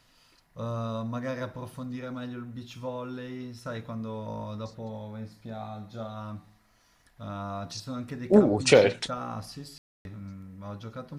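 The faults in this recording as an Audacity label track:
9.780000	10.050000	dropout 271 ms

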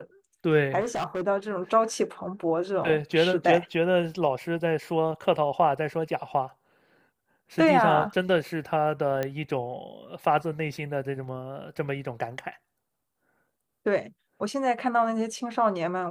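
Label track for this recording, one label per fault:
0.800000	1.220000	clipped -25.5 dBFS
9.230000	9.230000	pop -15 dBFS

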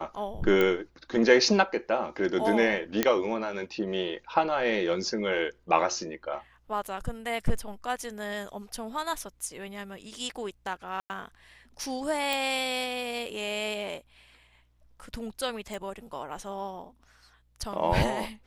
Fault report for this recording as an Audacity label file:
0.610000	0.610000	pop -13 dBFS
3.030000	3.030000	pop -7 dBFS
6.870000	6.870000	dropout 4.7 ms
11.000000	11.100000	dropout 99 ms
12.330000	12.330000	pop
15.740000	15.740000	pop

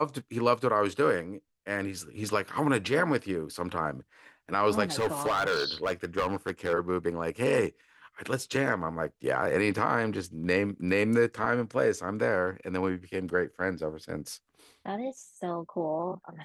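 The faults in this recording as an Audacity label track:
4.910000	6.740000	clipped -23 dBFS

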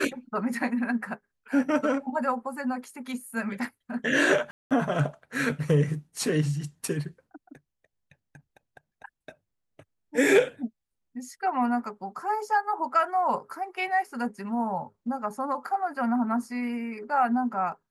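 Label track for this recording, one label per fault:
4.510000	4.710000	dropout 197 ms

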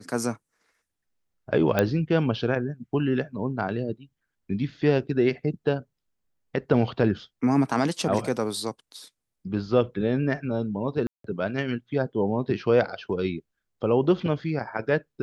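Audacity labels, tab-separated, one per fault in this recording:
1.790000	1.790000	pop -8 dBFS
11.070000	11.240000	dropout 173 ms

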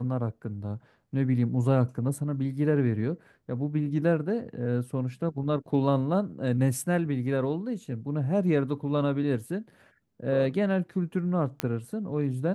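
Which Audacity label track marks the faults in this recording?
11.600000	11.600000	pop -12 dBFS

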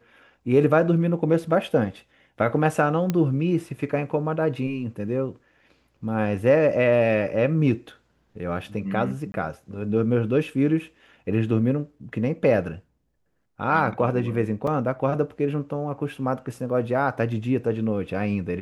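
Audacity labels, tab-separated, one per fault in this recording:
3.100000	3.100000	pop -11 dBFS
9.320000	9.340000	dropout 21 ms
14.670000	14.670000	dropout 3.8 ms

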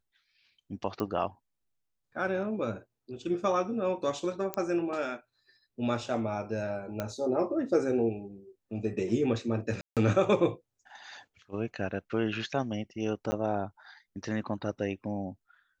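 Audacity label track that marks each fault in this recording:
1.000000	1.000000	pop -20 dBFS
4.540000	4.540000	pop -16 dBFS
7.000000	7.000000	pop -18 dBFS
9.810000	9.970000	dropout 157 ms
13.310000	13.320000	dropout 10 ms

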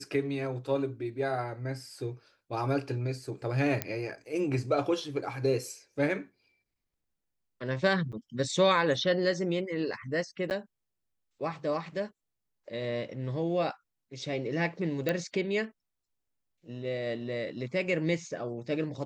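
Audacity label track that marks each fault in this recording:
3.820000	3.820000	pop -13 dBFS
8.120000	8.130000	dropout 7 ms
10.500000	10.510000	dropout 9.6 ms
15.090000	15.090000	pop -15 dBFS

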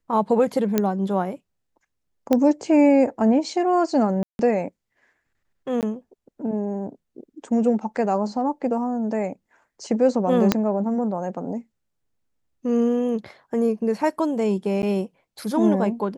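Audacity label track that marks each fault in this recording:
0.780000	0.780000	pop -6 dBFS
2.330000	2.330000	pop -8 dBFS
4.230000	4.390000	dropout 161 ms
5.810000	5.830000	dropout 18 ms
10.520000	10.520000	pop -3 dBFS
14.820000	14.830000	dropout 9.9 ms

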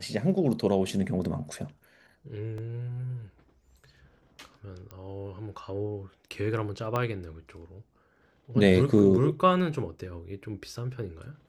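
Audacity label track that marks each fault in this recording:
2.580000	2.580000	dropout 2.9 ms
4.910000	4.910000	pop -28 dBFS
6.960000	6.960000	pop -16 dBFS

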